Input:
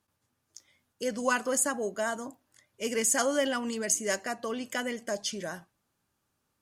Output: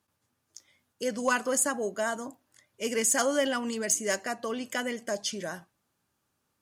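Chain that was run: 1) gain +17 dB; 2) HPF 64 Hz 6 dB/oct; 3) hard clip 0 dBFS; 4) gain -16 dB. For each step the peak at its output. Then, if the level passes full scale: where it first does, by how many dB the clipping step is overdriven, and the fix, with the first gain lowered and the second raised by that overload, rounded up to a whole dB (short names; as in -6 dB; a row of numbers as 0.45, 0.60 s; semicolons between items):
+5.0, +5.0, 0.0, -16.0 dBFS; step 1, 5.0 dB; step 1 +12 dB, step 4 -11 dB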